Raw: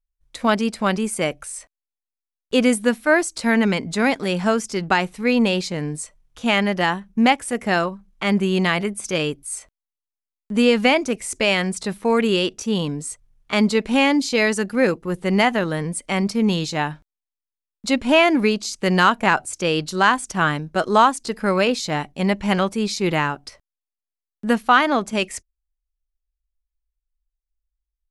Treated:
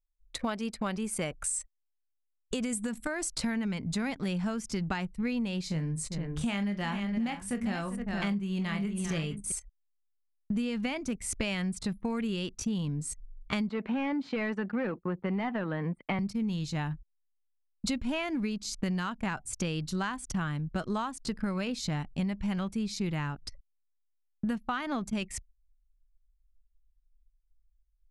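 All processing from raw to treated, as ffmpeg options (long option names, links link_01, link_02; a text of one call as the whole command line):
ffmpeg -i in.wav -filter_complex "[0:a]asettb=1/sr,asplit=3[link_01][link_02][link_03];[link_01]atrim=end=1.444[link_04];[link_02]atrim=start=1.44:end=3.24,asetpts=PTS-STARTPTS,afade=type=in:duration=0.004:curve=qsin,afade=type=out:start_time=1.796:duration=0.004:curve=qsin,acompressor=threshold=-21dB:ratio=5:attack=3.2:release=140:knee=1:detection=peak,equalizer=frequency=7800:width=2.3:gain=12[link_05];[link_03]atrim=start=3.236[link_06];[link_04][link_05]acrossfade=duration=0.004:curve1=hsin:curve2=qsin[link_07];[link_07][link_06]acrossfade=duration=0.004:curve1=qsin:curve2=hsin,asettb=1/sr,asplit=3[link_08][link_09][link_10];[link_08]atrim=end=5.654[link_11];[link_09]atrim=start=5.65:end=9.52,asetpts=PTS-STARTPTS,afade=type=in:duration=0.004:curve=qsin,afade=type=out:start_time=3.866:duration=0.004:curve=qsin,asplit=2[link_12][link_13];[link_13]adelay=25,volume=-9.5dB[link_14];[link_12][link_14]amix=inputs=2:normalize=0,atrim=end_sample=170667,aecho=1:1:44|396|466:0.2|0.188|0.266,atrim=end_sample=170667[link_15];[link_10]atrim=start=9.516[link_16];[link_11][link_15]acrossfade=duration=0.004:curve1=hsin:curve2=qsin[link_17];[link_17][link_16]acrossfade=duration=0.004:curve1=qsin:curve2=hsin,asettb=1/sr,asplit=3[link_18][link_19][link_20];[link_18]atrim=end=13.694[link_21];[link_19]atrim=start=13.69:end=16.19,asetpts=PTS-STARTPTS,afade=type=in:duration=0.004:curve=qsin,afade=type=out:start_time=2.496:duration=0.004:curve=qsin,asplit=2[link_22][link_23];[link_23]highpass=frequency=720:poles=1,volume=19dB,asoftclip=type=tanh:threshold=-3.5dB[link_24];[link_22][link_24]amix=inputs=2:normalize=0,lowpass=frequency=1200:poles=1,volume=-6dB,agate=range=-33dB:threshold=-36dB:ratio=3:release=100:detection=peak,acrossover=split=150 3400:gain=0.1 1 0.112[link_25][link_26][link_27];[link_25][link_26][link_27]amix=inputs=3:normalize=0[link_28];[link_20]atrim=start=16.186[link_29];[link_21][link_28]acrossfade=duration=0.004:curve1=hsin:curve2=qsin[link_30];[link_30][link_29]acrossfade=duration=0.004:curve1=qsin:curve2=hsin,anlmdn=0.631,asubboost=boost=5.5:cutoff=180,acompressor=threshold=-27dB:ratio=12,volume=-2dB" out.wav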